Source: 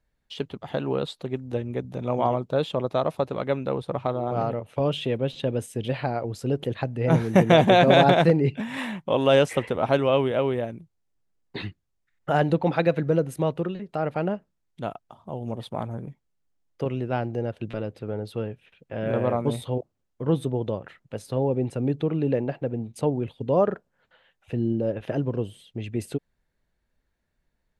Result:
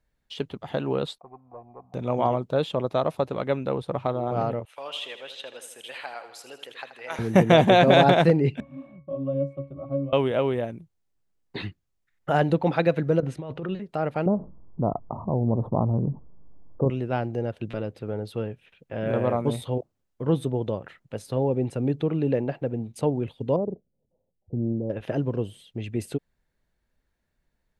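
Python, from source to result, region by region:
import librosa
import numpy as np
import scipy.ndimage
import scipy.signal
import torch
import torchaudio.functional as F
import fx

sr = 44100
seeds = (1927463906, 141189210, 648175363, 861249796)

y = fx.chain(x, sr, fx.peak_eq(hz=3300.0, db=-13.0, octaves=0.51),
    fx.leveller(passes=2),
    fx.formant_cascade(vowel='a'), at=(1.18, 1.94))
y = fx.chain(y, sr, fx.highpass(hz=1200.0, slope=12),
    fx.echo_feedback(ms=80, feedback_pct=58, wet_db=-11.0), at=(4.65, 7.19))
y = fx.chain(y, sr, fx.peak_eq(hz=1900.0, db=-12.0, octaves=1.4),
    fx.octave_resonator(note='C#', decay_s=0.22),
    fx.band_squash(depth_pct=40), at=(8.6, 10.13))
y = fx.chain(y, sr, fx.lowpass(hz=4200.0, slope=12),
    fx.over_compress(threshold_db=-31.0, ratio=-1.0), at=(13.2, 13.75))
y = fx.chain(y, sr, fx.ellip_lowpass(hz=1100.0, order=4, stop_db=50),
    fx.low_shelf(hz=340.0, db=8.5),
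    fx.env_flatten(amount_pct=50), at=(14.26, 16.9))
y = fx.chain(y, sr, fx.gaussian_blur(sigma=18.0),
    fx.doppler_dist(depth_ms=0.21), at=(23.56, 24.9))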